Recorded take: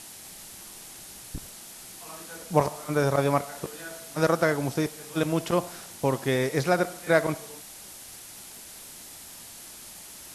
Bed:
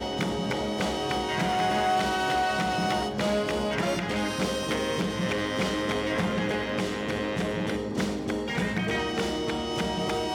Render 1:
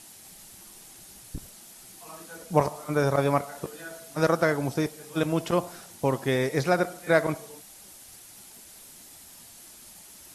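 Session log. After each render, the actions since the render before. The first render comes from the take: noise reduction 6 dB, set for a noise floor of -45 dBFS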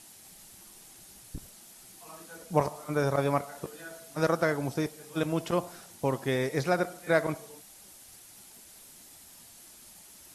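trim -3.5 dB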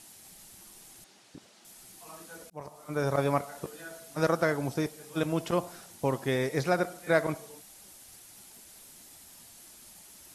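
1.04–1.65 s: band-pass 250–5000 Hz; 2.50–3.16 s: fade in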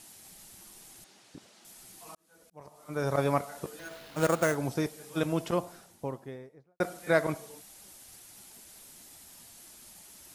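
2.15–3.21 s: fade in; 3.79–4.55 s: sample-rate reducer 8 kHz; 5.25–6.80 s: studio fade out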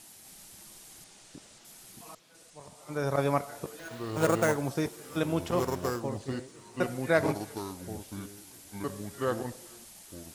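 feedback echo behind a high-pass 346 ms, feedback 59%, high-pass 2.1 kHz, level -22.5 dB; ever faster or slower copies 270 ms, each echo -4 st, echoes 2, each echo -6 dB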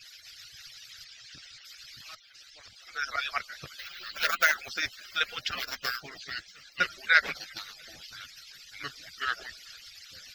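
harmonic-percussive separation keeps percussive; FFT filter 120 Hz 0 dB, 210 Hz -13 dB, 410 Hz -14 dB, 660 Hz -6 dB, 980 Hz -13 dB, 1.4 kHz +11 dB, 5.1 kHz +15 dB, 10 kHz -17 dB, 15 kHz +12 dB

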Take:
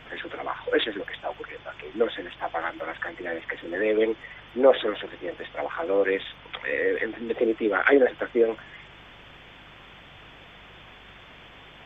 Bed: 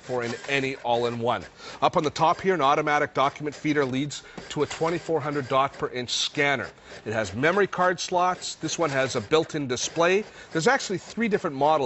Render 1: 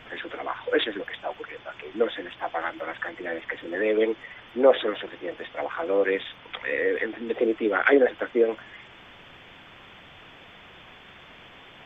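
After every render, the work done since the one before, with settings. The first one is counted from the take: de-hum 50 Hz, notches 3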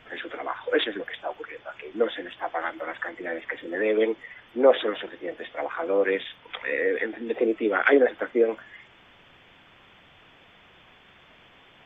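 noise print and reduce 6 dB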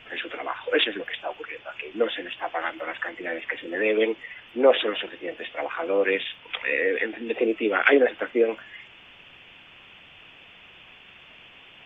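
peaking EQ 2.7 kHz +11.5 dB 0.49 oct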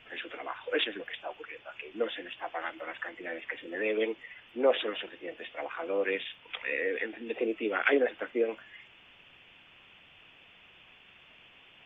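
trim -7.5 dB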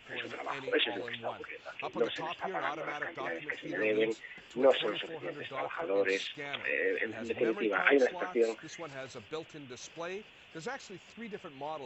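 add bed -19 dB

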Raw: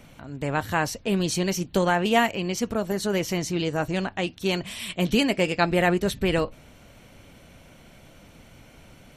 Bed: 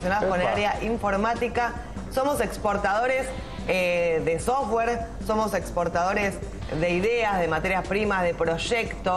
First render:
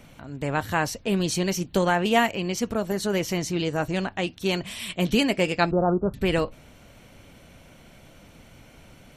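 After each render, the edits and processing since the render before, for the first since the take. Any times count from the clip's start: 5.71–6.14 s: steep low-pass 1.4 kHz 96 dB/octave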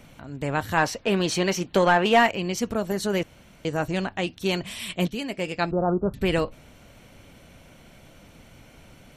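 0.77–2.31 s: overdrive pedal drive 14 dB, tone 2.1 kHz, clips at -6 dBFS; 3.23–3.65 s: room tone; 5.08–6.04 s: fade in, from -13 dB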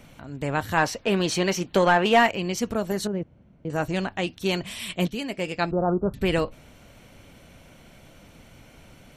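3.07–3.70 s: band-pass filter 130 Hz, Q 0.53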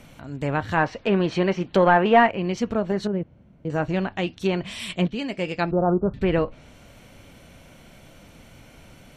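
harmonic-percussive split harmonic +3 dB; low-pass that closes with the level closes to 2.1 kHz, closed at -18 dBFS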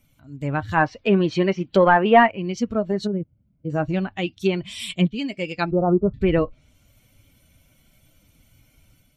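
expander on every frequency bin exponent 1.5; level rider gain up to 5 dB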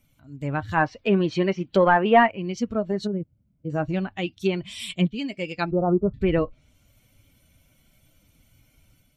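trim -2.5 dB

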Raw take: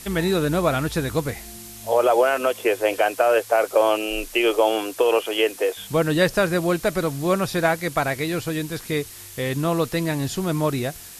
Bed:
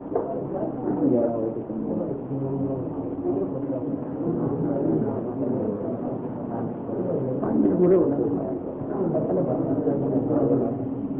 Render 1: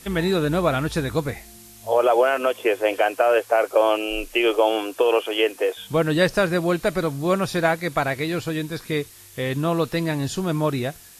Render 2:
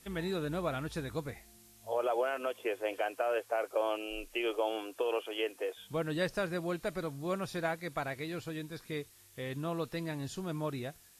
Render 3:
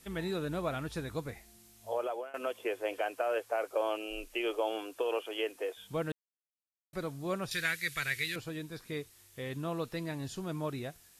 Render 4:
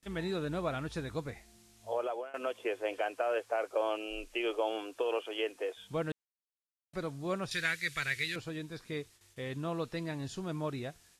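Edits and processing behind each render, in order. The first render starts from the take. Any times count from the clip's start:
noise print and reduce 6 dB
trim -14 dB
1.91–2.34 s: fade out, to -20.5 dB; 6.12–6.93 s: mute; 7.51–8.36 s: FFT filter 140 Hz 0 dB, 260 Hz -12 dB, 420 Hz -4 dB, 750 Hz -18 dB, 1.1 kHz -6 dB, 1.8 kHz +11 dB
low-pass 8.7 kHz 12 dB/octave; gate with hold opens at -52 dBFS

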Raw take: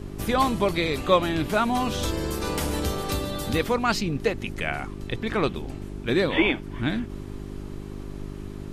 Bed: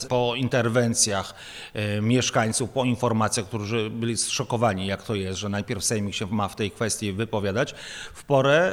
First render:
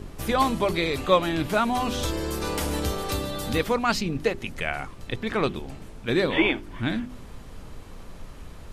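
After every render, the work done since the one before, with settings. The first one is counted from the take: de-hum 50 Hz, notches 8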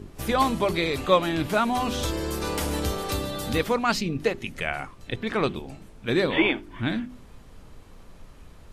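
noise print and reduce 6 dB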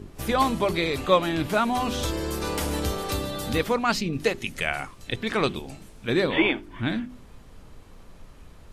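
4.13–6.07 s: peaking EQ 9.6 kHz +7.5 dB 2.8 oct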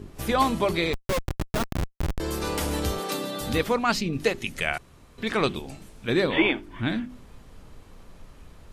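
0.93–2.20 s: Schmitt trigger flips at -19 dBFS; 2.99–3.41 s: steep high-pass 160 Hz; 4.78–5.18 s: room tone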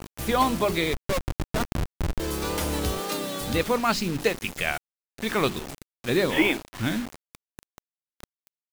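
vibrato 2 Hz 50 cents; bit crusher 6-bit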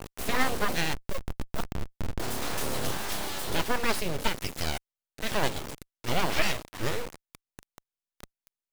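single-diode clipper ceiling -15.5 dBFS; full-wave rectifier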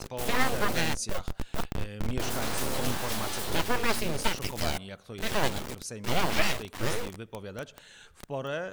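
add bed -15 dB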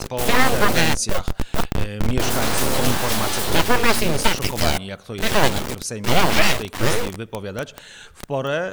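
trim +10.5 dB; peak limiter -1 dBFS, peak gain reduction 2.5 dB

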